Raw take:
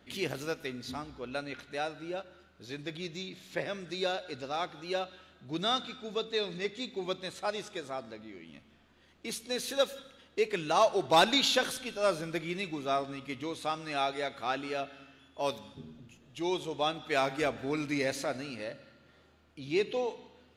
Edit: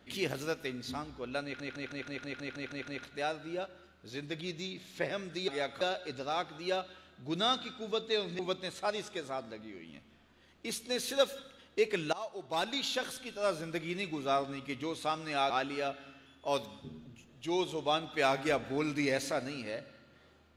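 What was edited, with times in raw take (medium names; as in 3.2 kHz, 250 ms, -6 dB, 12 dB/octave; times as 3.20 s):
1.44 s: stutter 0.16 s, 10 plays
6.62–6.99 s: delete
10.73–12.87 s: fade in, from -19 dB
14.10–14.43 s: move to 4.04 s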